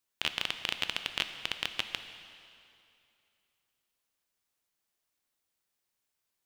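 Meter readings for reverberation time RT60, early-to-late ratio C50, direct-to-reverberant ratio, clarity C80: 2.6 s, 9.5 dB, 8.0 dB, 10.0 dB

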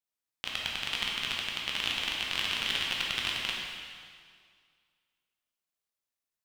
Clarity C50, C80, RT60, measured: -0.5 dB, 1.5 dB, 2.0 s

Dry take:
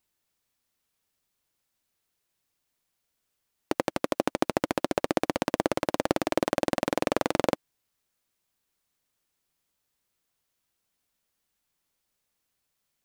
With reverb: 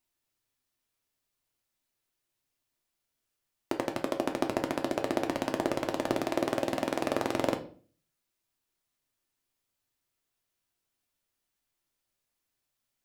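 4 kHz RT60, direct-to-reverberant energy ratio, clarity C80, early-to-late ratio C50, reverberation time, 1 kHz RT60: 0.35 s, 3.5 dB, 17.5 dB, 13.0 dB, 0.45 s, 0.40 s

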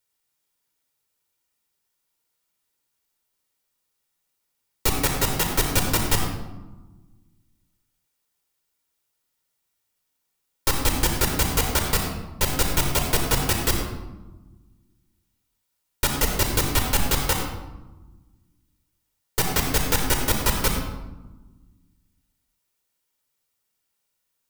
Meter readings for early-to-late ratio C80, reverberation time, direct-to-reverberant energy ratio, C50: 5.5 dB, 1.2 s, 2.0 dB, 3.5 dB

